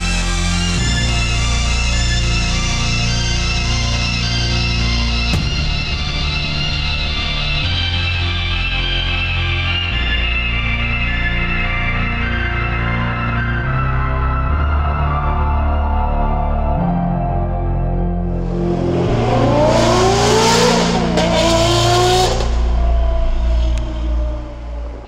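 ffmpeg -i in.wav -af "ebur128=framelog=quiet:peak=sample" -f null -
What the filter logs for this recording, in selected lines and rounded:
Integrated loudness:
  I:         -16.6 LUFS
  Threshold: -26.7 LUFS
Loudness range:
  LRA:         4.7 LU
  Threshold: -36.5 LUFS
  LRA low:   -18.1 LUFS
  LRA high:  -13.4 LUFS
Sample peak:
  Peak:       -5.6 dBFS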